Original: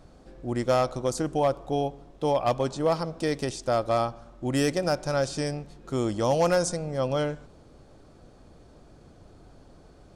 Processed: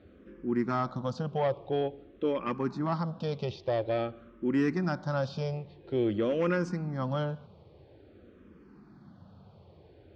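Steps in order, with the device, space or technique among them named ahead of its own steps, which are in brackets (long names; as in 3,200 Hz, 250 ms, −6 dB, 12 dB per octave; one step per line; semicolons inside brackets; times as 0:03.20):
barber-pole phaser into a guitar amplifier (frequency shifter mixed with the dry sound −0.49 Hz; soft clipping −19 dBFS, distortion −20 dB; loudspeaker in its box 88–3,800 Hz, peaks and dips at 90 Hz +7 dB, 200 Hz +8 dB, 370 Hz +3 dB, 690 Hz −5 dB)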